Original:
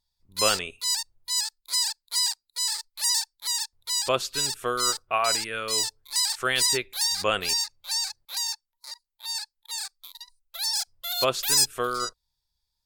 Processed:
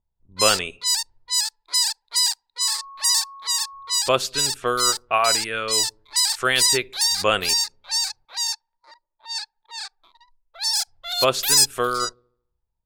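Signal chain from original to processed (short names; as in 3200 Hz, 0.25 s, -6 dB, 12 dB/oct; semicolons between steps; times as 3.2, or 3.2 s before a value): low-pass opened by the level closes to 740 Hz, open at -24 dBFS; 2.6–3.97 whine 1100 Hz -43 dBFS; dark delay 74 ms, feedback 49%, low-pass 420 Hz, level -21 dB; gain +5 dB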